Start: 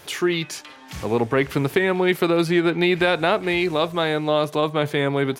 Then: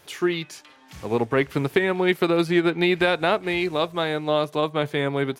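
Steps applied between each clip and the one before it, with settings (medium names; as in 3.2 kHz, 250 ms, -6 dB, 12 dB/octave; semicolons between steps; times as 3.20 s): upward expansion 1.5:1, over -31 dBFS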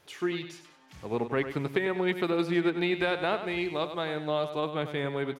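treble shelf 9 kHz -7.5 dB; feedback delay 98 ms, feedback 35%, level -10 dB; trim -7.5 dB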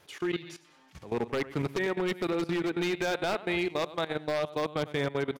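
wavefolder -21 dBFS; level held to a coarse grid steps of 16 dB; trim +3.5 dB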